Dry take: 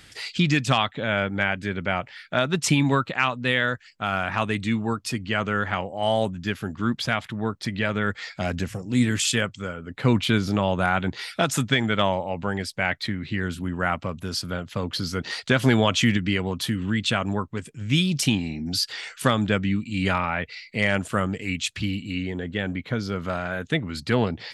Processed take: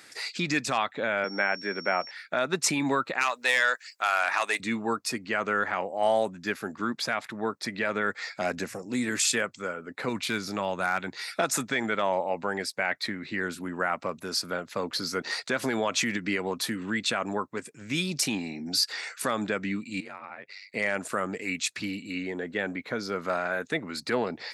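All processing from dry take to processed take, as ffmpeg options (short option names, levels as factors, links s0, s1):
-filter_complex "[0:a]asettb=1/sr,asplit=3[s0][s1][s2];[s0]atrim=end=1.244[s3];[s1]atrim=start=1.24:end=2.11,asetpts=PTS-STARTPTS,afade=t=in:d=0.004:c=qsin,afade=t=out:st=0.866:d=0.004:c=qsin,highpass=f=160:w=0.5412,highpass=f=160:w=1.3066,bass=f=250:g=-2,treble=f=4000:g=-15,aeval=exprs='val(0)+0.00891*sin(2*PI*5500*n/s)':c=same[s4];[s2]atrim=start=2.106[s5];[s3][s4]acrossfade=d=0.004:c1=hsin:c2=qsin[s6];[s6][s5]acrossfade=d=0.004:c1=qsin:c2=hsin,asettb=1/sr,asplit=3[s7][s8][s9];[s7]atrim=end=3.214[s10];[s8]atrim=start=3.21:end=4.6,asetpts=PTS-STARTPTS,afade=t=in:d=0.004:c=qsin,afade=t=out:st=1.386:d=0.004:c=qsin,highpass=520,highshelf=f=2700:g=12,aeval=exprs='(tanh(3.16*val(0)+0.25)-tanh(0.25))/3.16':c=same[s11];[s9]atrim=start=4.596[s12];[s10][s11]acrossfade=d=0.004:c1=hsin:c2=qsin[s13];[s13][s12]acrossfade=d=0.004:c1=qsin:c2=hsin,asettb=1/sr,asplit=3[s14][s15][s16];[s14]atrim=end=10.094[s17];[s15]atrim=start=10.09:end=11.28,asetpts=PTS-STARTPTS,afade=t=in:d=0.004:c=qsin,afade=t=out:st=1.186:d=0.004:c=qsin,equalizer=f=500:t=o:w=3:g=-6.5,asoftclip=type=hard:threshold=0.211[s18];[s16]atrim=start=11.276[s19];[s17][s18]acrossfade=d=0.004:c1=hsin:c2=qsin[s20];[s20][s19]acrossfade=d=0.004:c1=qsin:c2=hsin,asettb=1/sr,asplit=3[s21][s22][s23];[s21]atrim=end=20.004[s24];[s22]atrim=start=20:end=20.74,asetpts=PTS-STARTPTS,afade=t=in:d=0.004:c=qsin,afade=t=out:st=0.736:d=0.004:c=qsin,aeval=exprs='val(0)*sin(2*PI*49*n/s)':c=same,acompressor=threshold=0.0112:ratio=4:attack=3.2:release=140:knee=1:detection=peak[s25];[s23]atrim=start=20.736[s26];[s24][s25]acrossfade=d=0.004:c1=hsin:c2=qsin[s27];[s27][s26]acrossfade=d=0.004:c1=qsin:c2=hsin,equalizer=f=3100:t=o:w=0.33:g=-11.5,alimiter=limit=0.2:level=0:latency=1:release=90,highpass=320,volume=1.12"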